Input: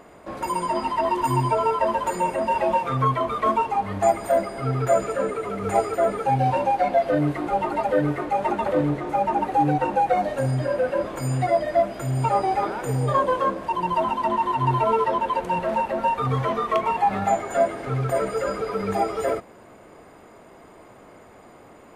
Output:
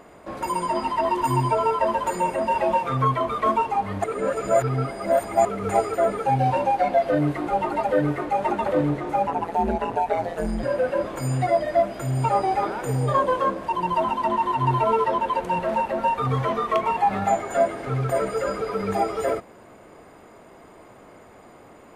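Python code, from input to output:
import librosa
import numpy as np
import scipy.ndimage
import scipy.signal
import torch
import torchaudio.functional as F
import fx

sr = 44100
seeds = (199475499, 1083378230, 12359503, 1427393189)

y = fx.ring_mod(x, sr, carrier_hz=86.0, at=(9.27, 10.63))
y = fx.edit(y, sr, fx.reverse_span(start_s=4.04, length_s=1.41), tone=tone)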